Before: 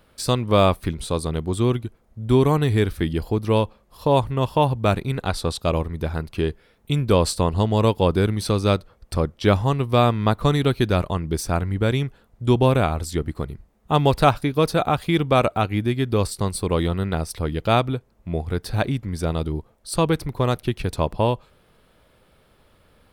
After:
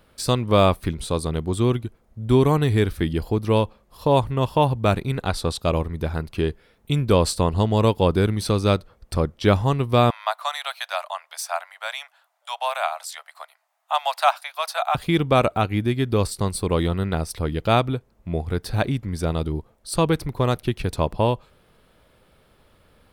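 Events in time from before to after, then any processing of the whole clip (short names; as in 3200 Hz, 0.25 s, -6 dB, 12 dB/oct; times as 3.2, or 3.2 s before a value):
10.1–14.95 steep high-pass 630 Hz 72 dB/oct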